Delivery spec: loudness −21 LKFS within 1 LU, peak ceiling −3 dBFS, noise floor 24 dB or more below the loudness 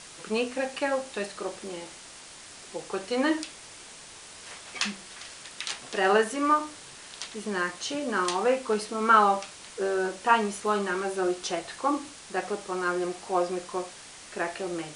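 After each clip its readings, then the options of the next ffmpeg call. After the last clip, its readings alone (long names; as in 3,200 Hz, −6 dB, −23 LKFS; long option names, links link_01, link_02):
background noise floor −47 dBFS; target noise floor −52 dBFS; integrated loudness −28.0 LKFS; sample peak −6.5 dBFS; target loudness −21.0 LKFS
→ -af "afftdn=noise_reduction=6:noise_floor=-47"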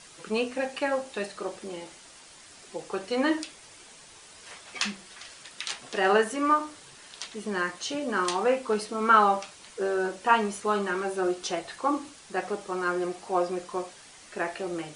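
background noise floor −51 dBFS; target noise floor −52 dBFS
→ -af "afftdn=noise_reduction=6:noise_floor=-51"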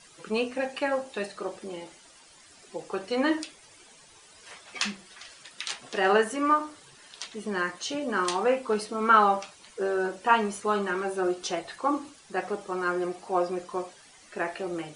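background noise floor −54 dBFS; integrated loudness −28.0 LKFS; sample peak −6.5 dBFS; target loudness −21.0 LKFS
→ -af "volume=7dB,alimiter=limit=-3dB:level=0:latency=1"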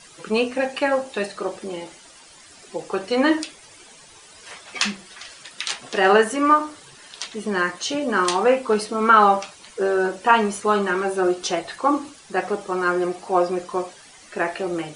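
integrated loudness −21.5 LKFS; sample peak −3.0 dBFS; background noise floor −47 dBFS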